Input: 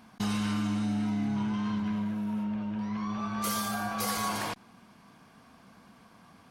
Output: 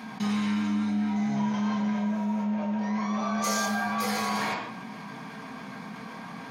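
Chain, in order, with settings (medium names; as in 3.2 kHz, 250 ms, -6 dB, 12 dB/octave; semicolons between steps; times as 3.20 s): 1.16–3.66 s: fifteen-band graphic EQ 100 Hz -5 dB, 630 Hz +10 dB, 6.3 kHz +11 dB; reverberation RT60 0.50 s, pre-delay 3 ms, DRR -3 dB; level flattener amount 50%; trim -7 dB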